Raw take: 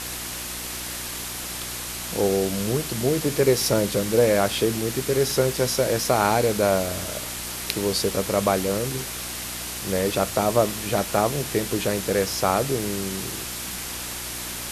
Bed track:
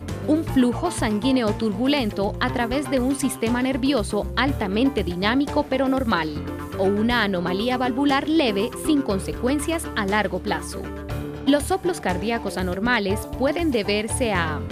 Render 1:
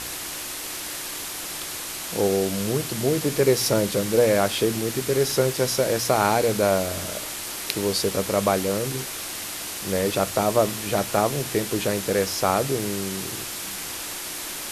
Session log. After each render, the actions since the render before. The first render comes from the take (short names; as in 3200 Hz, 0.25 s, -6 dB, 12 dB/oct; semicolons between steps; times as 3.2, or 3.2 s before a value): de-hum 60 Hz, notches 4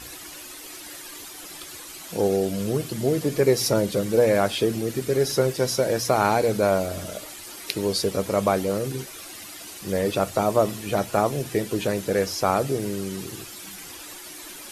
denoiser 11 dB, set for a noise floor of -33 dBFS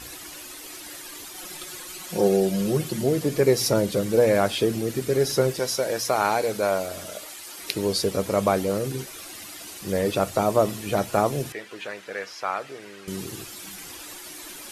1.34–3.04 comb 5.5 ms; 5.59–7.59 low shelf 300 Hz -11.5 dB; 11.52–13.08 band-pass 1800 Hz, Q 1.1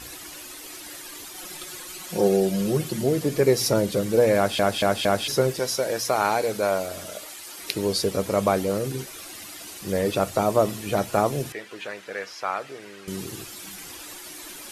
4.36 stutter in place 0.23 s, 4 plays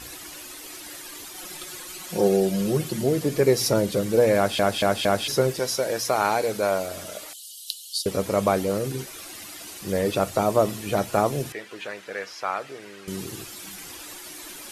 7.33–8.06 rippled Chebyshev high-pass 2900 Hz, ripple 3 dB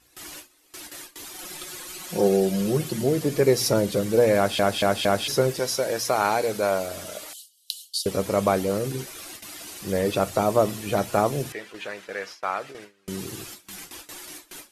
gate with hold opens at -28 dBFS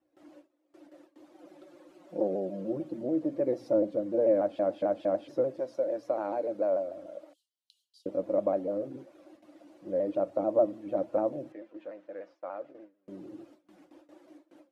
double band-pass 420 Hz, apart 0.79 oct; shaped vibrato saw down 6.8 Hz, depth 100 cents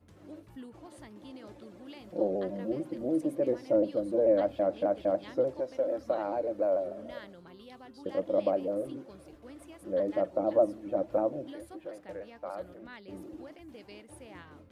add bed track -28 dB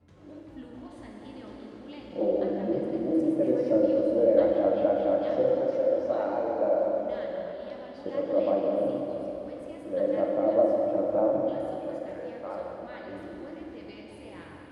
air absorption 68 m; plate-style reverb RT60 3.6 s, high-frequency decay 0.8×, DRR -2.5 dB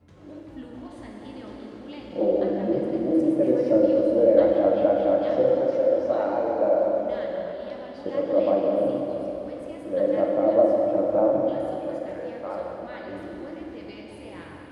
gain +4 dB